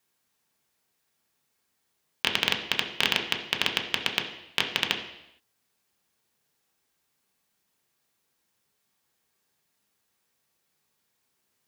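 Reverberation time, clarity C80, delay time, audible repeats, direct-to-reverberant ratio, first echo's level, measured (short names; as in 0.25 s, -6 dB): 0.85 s, 10.5 dB, none, none, 1.0 dB, none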